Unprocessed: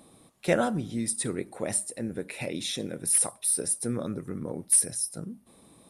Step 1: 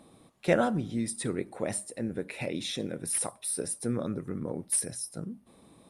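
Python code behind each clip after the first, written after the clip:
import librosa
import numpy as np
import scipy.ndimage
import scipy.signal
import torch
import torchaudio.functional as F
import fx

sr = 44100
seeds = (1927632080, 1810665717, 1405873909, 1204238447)

y = fx.high_shelf(x, sr, hz=6200.0, db=-9.5)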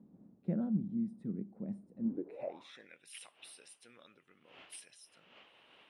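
y = fx.dmg_wind(x, sr, seeds[0], corner_hz=540.0, level_db=-44.0)
y = fx.filter_sweep_bandpass(y, sr, from_hz=200.0, to_hz=2900.0, start_s=2.03, end_s=3.01, q=5.8)
y = F.gain(torch.from_numpy(y), 2.5).numpy()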